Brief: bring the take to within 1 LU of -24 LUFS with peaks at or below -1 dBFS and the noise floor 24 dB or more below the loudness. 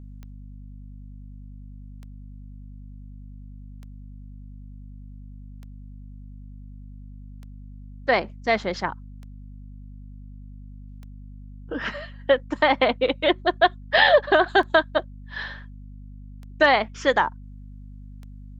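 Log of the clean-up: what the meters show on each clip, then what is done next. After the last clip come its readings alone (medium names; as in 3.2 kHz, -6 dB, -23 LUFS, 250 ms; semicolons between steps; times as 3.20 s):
clicks found 11; hum 50 Hz; highest harmonic 250 Hz; hum level -38 dBFS; loudness -22.0 LUFS; peak level -4.0 dBFS; loudness target -24.0 LUFS
-> de-click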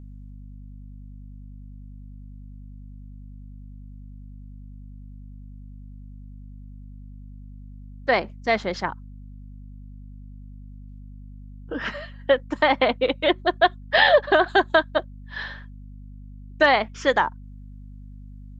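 clicks found 0; hum 50 Hz; highest harmonic 250 Hz; hum level -38 dBFS
-> de-hum 50 Hz, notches 5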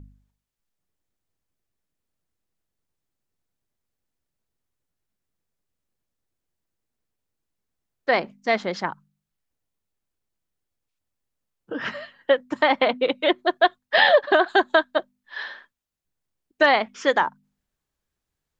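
hum not found; loudness -21.5 LUFS; peak level -4.0 dBFS; loudness target -24.0 LUFS
-> trim -2.5 dB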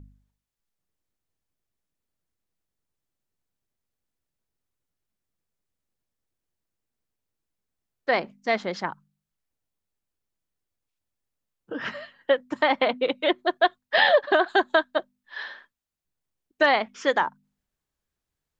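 loudness -24.0 LUFS; peak level -6.5 dBFS; noise floor -86 dBFS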